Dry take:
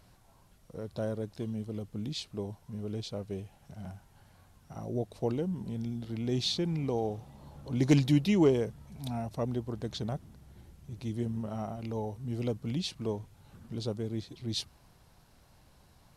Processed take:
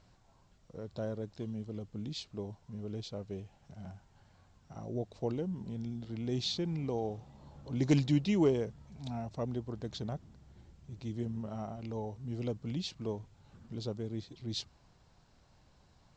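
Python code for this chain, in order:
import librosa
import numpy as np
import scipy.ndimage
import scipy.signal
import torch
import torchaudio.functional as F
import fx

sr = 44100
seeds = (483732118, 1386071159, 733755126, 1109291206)

y = scipy.signal.sosfilt(scipy.signal.cheby1(5, 1.0, 7500.0, 'lowpass', fs=sr, output='sos'), x)
y = F.gain(torch.from_numpy(y), -3.5).numpy()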